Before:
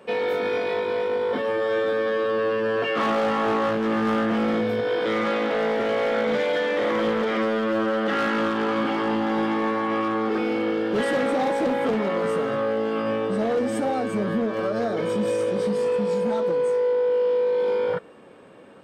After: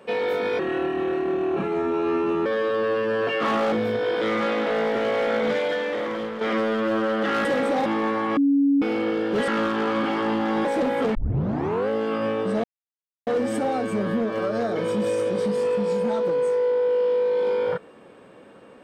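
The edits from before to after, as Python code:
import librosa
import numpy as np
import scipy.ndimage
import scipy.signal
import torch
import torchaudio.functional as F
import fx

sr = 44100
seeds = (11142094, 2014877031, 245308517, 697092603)

y = fx.edit(x, sr, fx.speed_span(start_s=0.59, length_s=1.42, speed=0.76),
    fx.cut(start_s=3.27, length_s=1.29),
    fx.fade_out_to(start_s=6.34, length_s=0.91, floor_db=-9.5),
    fx.swap(start_s=8.29, length_s=1.17, other_s=11.08, other_length_s=0.41),
    fx.bleep(start_s=9.97, length_s=0.45, hz=280.0, db=-15.5),
    fx.tape_start(start_s=11.99, length_s=0.74),
    fx.insert_silence(at_s=13.48, length_s=0.63), tone=tone)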